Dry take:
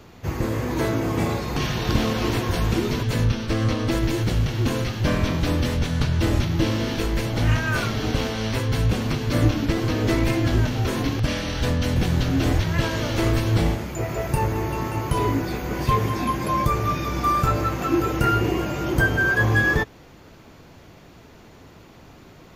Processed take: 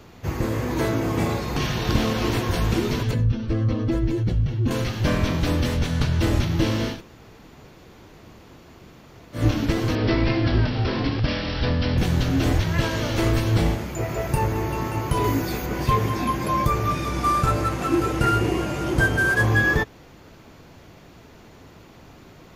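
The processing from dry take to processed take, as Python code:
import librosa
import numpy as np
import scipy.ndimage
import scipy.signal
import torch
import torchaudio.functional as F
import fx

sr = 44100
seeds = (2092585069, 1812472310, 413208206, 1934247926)

y = fx.spec_expand(x, sr, power=1.5, at=(3.11, 4.71))
y = fx.resample_bad(y, sr, factor=4, down='none', up='filtered', at=(9.95, 11.98))
y = fx.high_shelf(y, sr, hz=5900.0, db=9.5, at=(15.24, 15.66))
y = fx.cvsd(y, sr, bps=64000, at=(16.91, 19.47))
y = fx.edit(y, sr, fx.room_tone_fill(start_s=6.94, length_s=2.46, crossfade_s=0.16), tone=tone)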